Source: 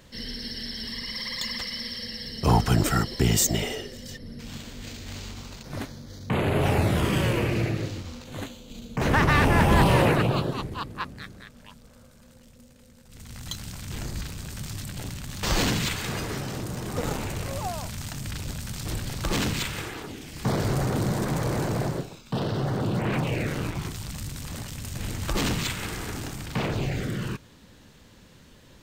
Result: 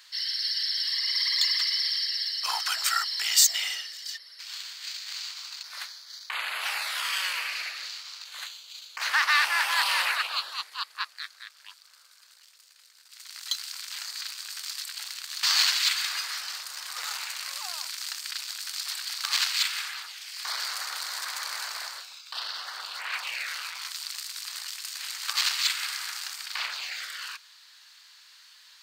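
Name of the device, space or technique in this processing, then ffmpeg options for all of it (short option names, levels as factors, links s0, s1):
headphones lying on a table: -af "highpass=f=1200:w=0.5412,highpass=f=1200:w=1.3066,equalizer=f=4500:t=o:w=0.45:g=10,volume=1.26"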